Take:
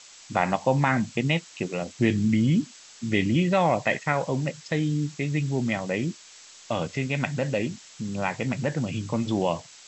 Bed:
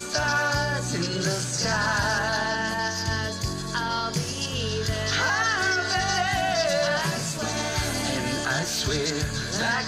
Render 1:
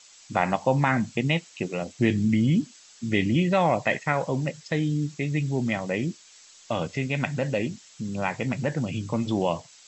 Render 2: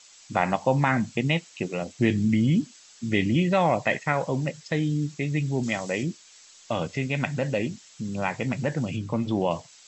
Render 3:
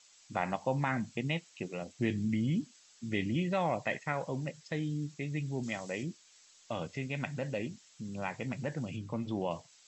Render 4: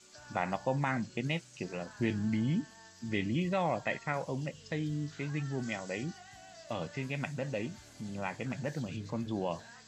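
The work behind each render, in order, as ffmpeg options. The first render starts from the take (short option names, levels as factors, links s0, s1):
-af "afftdn=nr=6:nf=-49"
-filter_complex "[0:a]asettb=1/sr,asplit=3[s0][s1][s2];[s0]atrim=end=5.634[s3];[s1]atrim=start=5.63:end=6.03,asetpts=PTS-STARTPTS,afade=t=in:d=0.004:c=qsin,afade=t=out:st=0.396:d=0.004:c=qsin,bass=f=250:g=-4,treble=f=4000:g=9[s4];[s2]atrim=start=6.026[s5];[s3][s4]acrossfade=d=0.004:c1=hsin:c2=qsin[s6];[s6][s5]acrossfade=d=0.004:c1=qsin:c2=hsin,asettb=1/sr,asplit=3[s7][s8][s9];[s7]atrim=end=8.964[s10];[s8]atrim=start=8.96:end=9.51,asetpts=PTS-STARTPTS,afade=t=in:d=0.004:c=qsin,afade=t=out:st=0.546:d=0.004:c=qsin,lowpass=f=3100:p=1[s11];[s9]atrim=start=9.506[s12];[s10][s11]acrossfade=d=0.004:c1=hsin:c2=qsin[s13];[s13][s12]acrossfade=d=0.004:c1=qsin:c2=hsin"
-af "volume=0.335"
-filter_complex "[1:a]volume=0.0355[s0];[0:a][s0]amix=inputs=2:normalize=0"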